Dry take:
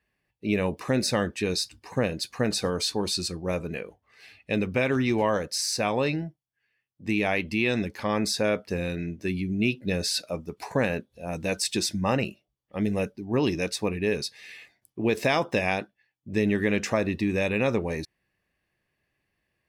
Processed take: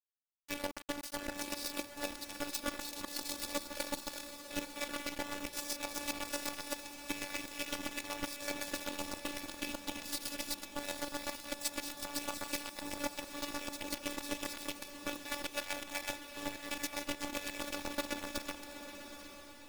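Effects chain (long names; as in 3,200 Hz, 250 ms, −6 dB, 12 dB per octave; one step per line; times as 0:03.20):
feedback delay that plays each chunk backwards 182 ms, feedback 66%, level −4.5 dB
high-shelf EQ 6,300 Hz +7.5 dB
reversed playback
downward compressor 16 to 1, threshold −31 dBFS, peak gain reduction 14.5 dB
reversed playback
bit reduction 5 bits
square-wave tremolo 7.9 Hz, depth 65%, duty 25%
phases set to zero 289 Hz
feedback delay with all-pass diffusion 868 ms, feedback 46%, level −9 dB
level +1 dB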